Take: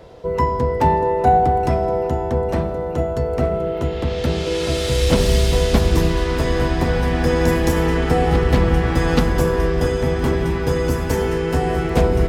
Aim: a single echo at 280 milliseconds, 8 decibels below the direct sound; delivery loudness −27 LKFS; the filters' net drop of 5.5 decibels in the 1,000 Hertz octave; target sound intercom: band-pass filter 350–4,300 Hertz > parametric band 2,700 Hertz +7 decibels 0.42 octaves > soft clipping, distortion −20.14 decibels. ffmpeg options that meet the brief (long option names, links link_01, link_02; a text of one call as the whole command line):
ffmpeg -i in.wav -af "highpass=350,lowpass=4300,equalizer=frequency=1000:width_type=o:gain=-8,equalizer=frequency=2700:width_type=o:width=0.42:gain=7,aecho=1:1:280:0.398,asoftclip=threshold=-14.5dB,volume=-2.5dB" out.wav